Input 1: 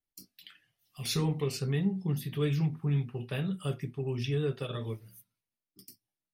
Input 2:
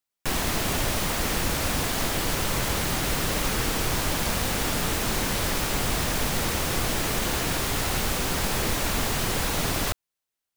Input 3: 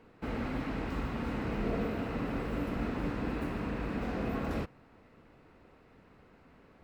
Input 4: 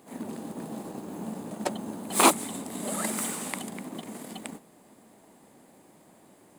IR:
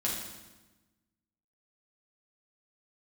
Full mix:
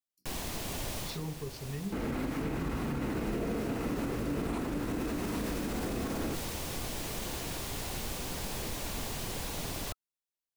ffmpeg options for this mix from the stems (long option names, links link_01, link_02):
-filter_complex "[0:a]afwtdn=0.00794,volume=-9dB,asplit=2[link_01][link_02];[1:a]equalizer=frequency=1600:width_type=o:width=1.1:gain=-4.5,bandreject=frequency=1300:width=21,acontrast=81,volume=-17.5dB[link_03];[2:a]equalizer=frequency=330:width_type=o:width=0.64:gain=6,adelay=1700,volume=2.5dB[link_04];[3:a]lowpass=frequency=2900:poles=1,adelay=2300,volume=-18dB[link_05];[link_02]apad=whole_len=465804[link_06];[link_03][link_06]sidechaincompress=threshold=-44dB:ratio=8:attack=41:release=1350[link_07];[link_01][link_07][link_04][link_05]amix=inputs=4:normalize=0,alimiter=level_in=1.5dB:limit=-24dB:level=0:latency=1:release=57,volume=-1.5dB"